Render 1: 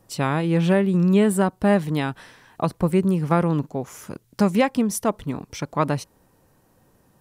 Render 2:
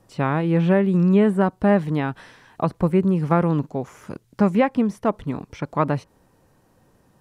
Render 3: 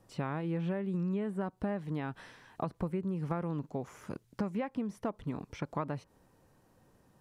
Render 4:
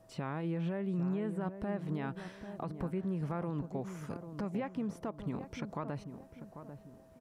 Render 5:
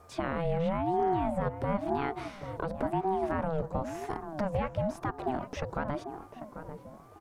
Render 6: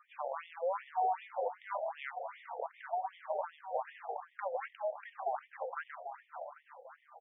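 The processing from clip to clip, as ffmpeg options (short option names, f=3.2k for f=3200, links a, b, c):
-filter_complex "[0:a]acrossover=split=2600[a][b];[b]acompressor=threshold=-49dB:ratio=4:attack=1:release=60[c];[a][c]amix=inputs=2:normalize=0,highshelf=f=12k:g=-12,volume=1dB"
-af "acompressor=threshold=-25dB:ratio=6,volume=-6.5dB"
-filter_complex "[0:a]alimiter=level_in=4dB:limit=-24dB:level=0:latency=1:release=56,volume=-4dB,aeval=exprs='val(0)+0.000891*sin(2*PI*650*n/s)':c=same,asplit=2[a][b];[b]adelay=794,lowpass=f=980:p=1,volume=-9dB,asplit=2[c][d];[d]adelay=794,lowpass=f=980:p=1,volume=0.4,asplit=2[e][f];[f]adelay=794,lowpass=f=980:p=1,volume=0.4,asplit=2[g][h];[h]adelay=794,lowpass=f=980:p=1,volume=0.4[i];[a][c][e][g][i]amix=inputs=5:normalize=0"
-af "aeval=exprs='val(0)*sin(2*PI*440*n/s+440*0.3/0.97*sin(2*PI*0.97*n/s))':c=same,volume=8.5dB"
-af "aecho=1:1:563|1126|1689|2252:0.266|0.114|0.0492|0.0212,afftfilt=real='re*between(b*sr/1024,600*pow(2600/600,0.5+0.5*sin(2*PI*2.6*pts/sr))/1.41,600*pow(2600/600,0.5+0.5*sin(2*PI*2.6*pts/sr))*1.41)':imag='im*between(b*sr/1024,600*pow(2600/600,0.5+0.5*sin(2*PI*2.6*pts/sr))/1.41,600*pow(2600/600,0.5+0.5*sin(2*PI*2.6*pts/sr))*1.41)':win_size=1024:overlap=0.75"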